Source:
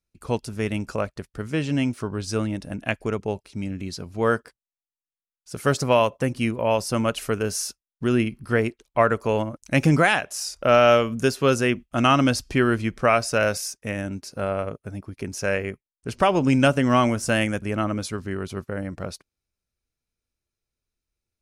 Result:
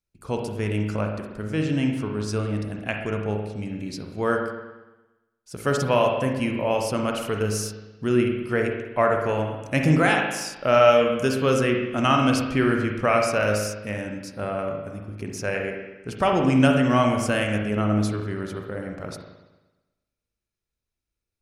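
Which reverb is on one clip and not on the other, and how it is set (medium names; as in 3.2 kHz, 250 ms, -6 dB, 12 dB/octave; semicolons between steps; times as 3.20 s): spring tank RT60 1.1 s, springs 38/57 ms, chirp 30 ms, DRR 2 dB; trim -3 dB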